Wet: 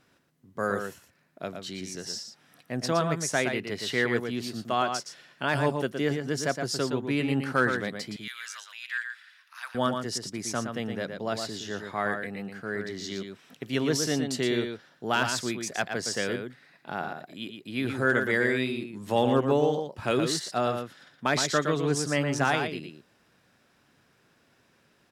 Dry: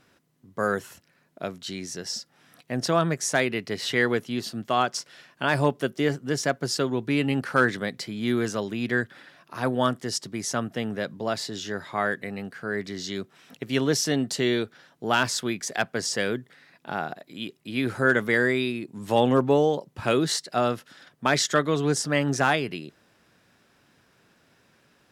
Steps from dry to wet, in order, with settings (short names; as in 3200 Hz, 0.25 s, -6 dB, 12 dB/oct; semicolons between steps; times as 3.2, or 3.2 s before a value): 8.16–9.75 HPF 1400 Hz 24 dB/oct; outdoor echo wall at 20 m, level -6 dB; gain -3.5 dB